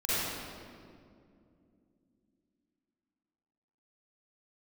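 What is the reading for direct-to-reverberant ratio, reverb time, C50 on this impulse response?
-13.0 dB, 2.4 s, -9.5 dB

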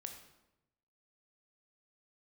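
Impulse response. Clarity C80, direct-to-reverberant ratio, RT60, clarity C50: 9.5 dB, 4.5 dB, 0.95 s, 7.0 dB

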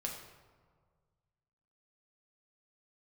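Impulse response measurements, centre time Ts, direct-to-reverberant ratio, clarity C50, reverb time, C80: 40 ms, -0.5 dB, 5.0 dB, 1.7 s, 7.0 dB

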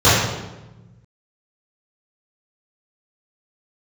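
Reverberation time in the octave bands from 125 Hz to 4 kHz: 2.0, 1.7, 1.1, 1.0, 0.85, 0.80 s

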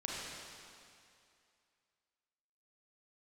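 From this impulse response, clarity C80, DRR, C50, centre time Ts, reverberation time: -1.0 dB, -5.0 dB, -3.0 dB, 0.152 s, 2.5 s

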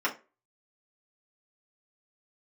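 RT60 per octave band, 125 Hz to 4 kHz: 0.30, 0.30, 0.35, 0.30, 0.30, 0.20 s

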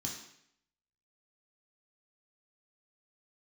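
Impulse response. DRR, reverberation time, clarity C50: -3.0 dB, 0.70 s, 4.5 dB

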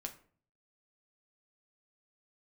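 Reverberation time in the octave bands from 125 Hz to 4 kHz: 0.75, 0.65, 0.50, 0.45, 0.40, 0.30 s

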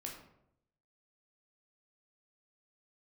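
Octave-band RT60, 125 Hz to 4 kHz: 1.0, 0.85, 0.85, 0.70, 0.55, 0.45 s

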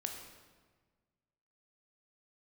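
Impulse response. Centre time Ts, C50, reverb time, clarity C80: 40 ms, 5.0 dB, 1.5 s, 6.5 dB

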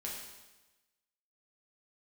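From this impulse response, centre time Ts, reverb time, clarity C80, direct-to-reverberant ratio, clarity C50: 59 ms, 1.1 s, 4.5 dB, -4.0 dB, 2.0 dB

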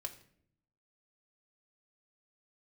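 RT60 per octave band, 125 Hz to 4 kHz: 1.1, 1.0, 0.75, 0.55, 0.55, 0.45 s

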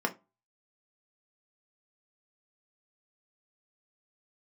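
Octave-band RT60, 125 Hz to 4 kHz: 0.30, 0.30, 0.25, 0.25, 0.20, 0.15 s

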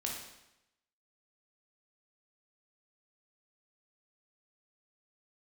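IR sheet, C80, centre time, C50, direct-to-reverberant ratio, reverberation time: 5.5 dB, 49 ms, 2.5 dB, -1.5 dB, 0.90 s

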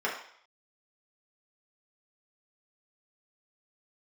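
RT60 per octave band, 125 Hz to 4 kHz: 0.25, 0.45, 0.60, 0.60, 0.65, 0.65 s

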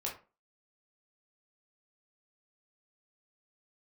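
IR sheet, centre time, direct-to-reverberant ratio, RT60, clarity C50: 24 ms, -2.5 dB, 0.35 s, 8.0 dB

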